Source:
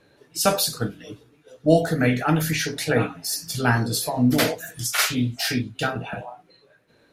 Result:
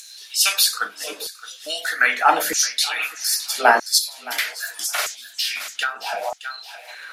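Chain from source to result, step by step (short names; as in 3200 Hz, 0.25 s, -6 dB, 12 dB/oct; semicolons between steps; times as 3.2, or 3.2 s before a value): steep high-pass 180 Hz 72 dB/oct; LFO high-pass saw down 0.79 Hz 510–6900 Hz; upward compressor, threshold -30 dBFS; thinning echo 0.618 s, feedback 29%, high-pass 1100 Hz, level -14.5 dB; 3.98–6.24 compressor 3:1, threshold -29 dBFS, peak gain reduction 10.5 dB; gain +5.5 dB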